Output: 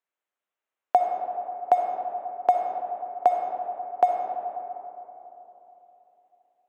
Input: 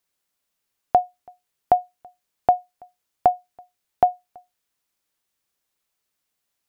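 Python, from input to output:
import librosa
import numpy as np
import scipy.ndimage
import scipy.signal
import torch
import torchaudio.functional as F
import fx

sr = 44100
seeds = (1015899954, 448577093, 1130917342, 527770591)

p1 = fx.wiener(x, sr, points=9)
p2 = scipy.signal.sosfilt(scipy.signal.butter(2, 420.0, 'highpass', fs=sr, output='sos'), p1)
p3 = np.sign(p2) * np.maximum(np.abs(p2) - 10.0 ** (-33.5 / 20.0), 0.0)
p4 = p2 + (p3 * librosa.db_to_amplitude(-8.5))
p5 = fx.rev_freeverb(p4, sr, rt60_s=3.5, hf_ratio=0.35, predelay_ms=20, drr_db=2.0)
y = p5 * librosa.db_to_amplitude(-4.5)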